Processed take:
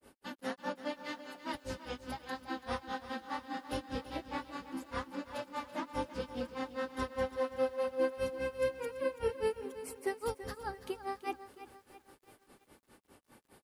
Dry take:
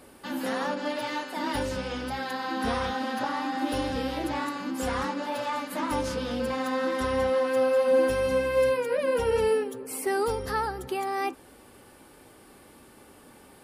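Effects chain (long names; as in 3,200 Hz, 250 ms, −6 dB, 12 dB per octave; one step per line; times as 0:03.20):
granular cloud 156 ms, grains 4.9 per second, spray 27 ms, pitch spread up and down by 0 semitones
feedback echo at a low word length 333 ms, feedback 55%, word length 9 bits, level −13 dB
level −5.5 dB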